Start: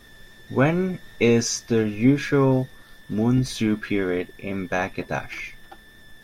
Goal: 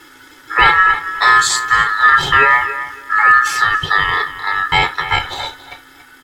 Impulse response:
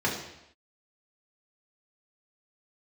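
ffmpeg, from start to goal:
-filter_complex "[0:a]asplit=2[a][b];[b]adelay=279,lowpass=f=2.4k:p=1,volume=-13dB,asplit=2[c][d];[d]adelay=279,lowpass=f=2.4k:p=1,volume=0.23,asplit=2[e][f];[f]adelay=279,lowpass=f=2.4k:p=1,volume=0.23[g];[a][c][e][g]amix=inputs=4:normalize=0,asplit=2[h][i];[1:a]atrim=start_sample=2205,afade=t=out:st=0.13:d=0.01,atrim=end_sample=6174[j];[i][j]afir=irnorm=-1:irlink=0,volume=-18dB[k];[h][k]amix=inputs=2:normalize=0,aeval=exprs='val(0)*sin(2*PI*1500*n/s)':c=same,aecho=1:1:2.3:0.98,apsyclip=10dB,volume=-2dB"

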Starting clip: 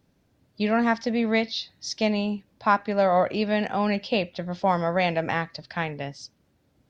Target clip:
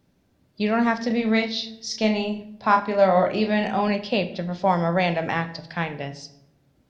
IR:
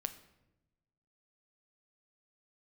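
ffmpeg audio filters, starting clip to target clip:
-filter_complex "[0:a]asettb=1/sr,asplit=3[a][b][c];[a]atrim=end=1.074[d];[b]atrim=start=1.07:end=3.88,asetpts=PTS-STARTPTS,afade=t=in:d=0.004:c=qsin,afade=t=out:st=2.806:d=0.004:c=qsin,asplit=2[e][f];[f]adelay=32,volume=-5dB[g];[e][g]amix=inputs=2:normalize=0,atrim=end_sample=123921[h];[c]atrim=start=3.876[i];[d][h]acrossfade=d=0.004:c1=hsin:c2=qsin[j];[j][i]acrossfade=d=0.004:c1=qsin:c2=hsin[k];[1:a]atrim=start_sample=2205,asetrate=57330,aresample=44100[l];[k][l]afir=irnorm=-1:irlink=0,volume=4.5dB"

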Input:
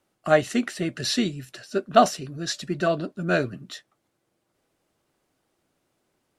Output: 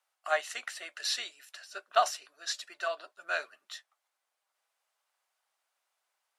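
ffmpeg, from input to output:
-af "highpass=f=760:w=0.5412,highpass=f=760:w=1.3066,volume=-5dB"

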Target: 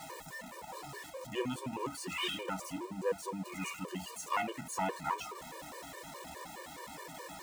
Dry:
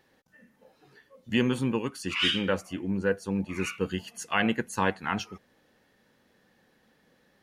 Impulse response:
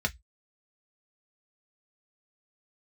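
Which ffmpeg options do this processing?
-filter_complex "[0:a]aeval=exprs='val(0)+0.5*0.0266*sgn(val(0))':c=same,equalizer=f=1k:t=o:w=0.33:g=9,equalizer=f=1.6k:t=o:w=0.33:g=-9,equalizer=f=8k:t=o:w=0.33:g=5,aeval=exprs='clip(val(0),-1,0.126)':c=same,lowshelf=f=240:g=-9,asplit=2[a][b];[1:a]atrim=start_sample=2205[c];[b][c]afir=irnorm=-1:irlink=0,volume=-13.5dB[d];[a][d]amix=inputs=2:normalize=0,afftfilt=real='re*gt(sin(2*PI*4.8*pts/sr)*(1-2*mod(floor(b*sr/1024/310),2)),0)':imag='im*gt(sin(2*PI*4.8*pts/sr)*(1-2*mod(floor(b*sr/1024/310),2)),0)':win_size=1024:overlap=0.75,volume=-6dB"

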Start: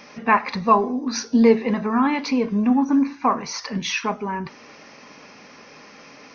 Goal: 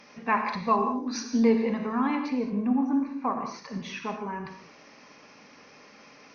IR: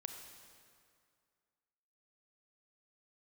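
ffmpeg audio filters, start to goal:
-filter_complex "[0:a]asettb=1/sr,asplit=3[a][b][c];[a]atrim=end=2.154[d];[b]atrim=start=2.15:end=4.19,asetpts=PTS-STARTPTS,afade=t=in:d=0.004:c=qsin,afade=t=out:st=2.036:d=0.004:c=qsin,highshelf=f=2.6k:g=-11.5[e];[c]atrim=start=4.186[f];[d][e]acrossfade=d=0.004:c1=hsin:c2=qsin[g];[g][f]acrossfade=d=0.004:c1=qsin:c2=hsin[h];[1:a]atrim=start_sample=2205,afade=t=out:st=0.22:d=0.01,atrim=end_sample=10143,asetrate=34839,aresample=44100[i];[h][i]afir=irnorm=-1:irlink=0,volume=-5dB"

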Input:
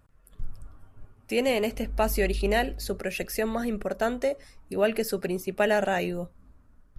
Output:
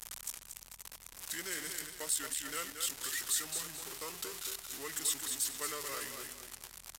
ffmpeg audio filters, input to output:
-af "aeval=exprs='val(0)+0.5*0.0473*sgn(val(0))':c=same,aderivative,aecho=1:1:224|448|672|896:0.473|0.166|0.058|0.0203,aeval=exprs='val(0)+0.001*(sin(2*PI*60*n/s)+sin(2*PI*2*60*n/s)/2+sin(2*PI*3*60*n/s)/3+sin(2*PI*4*60*n/s)/4+sin(2*PI*5*60*n/s)/5)':c=same,asetrate=31183,aresample=44100,atempo=1.41421,volume=-3.5dB"

